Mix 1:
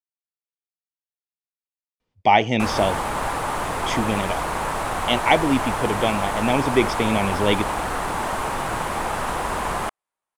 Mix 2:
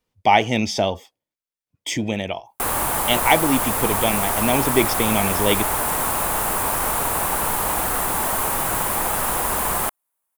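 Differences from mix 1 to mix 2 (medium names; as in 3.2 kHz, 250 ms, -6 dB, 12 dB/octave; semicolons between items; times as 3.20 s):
speech: entry -2.00 s; master: remove distance through air 91 m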